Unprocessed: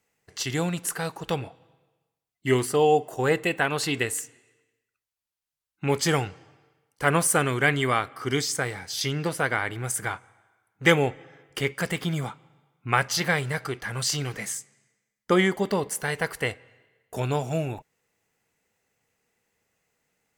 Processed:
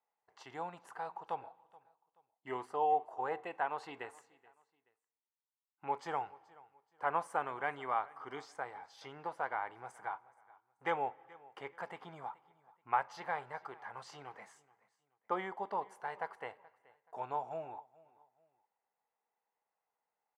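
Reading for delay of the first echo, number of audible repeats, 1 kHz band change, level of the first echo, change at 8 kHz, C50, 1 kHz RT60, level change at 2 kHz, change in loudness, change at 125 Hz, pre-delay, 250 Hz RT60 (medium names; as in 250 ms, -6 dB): 428 ms, 2, -6.0 dB, -22.5 dB, under -30 dB, no reverb, no reverb, -17.5 dB, -14.0 dB, -29.5 dB, no reverb, no reverb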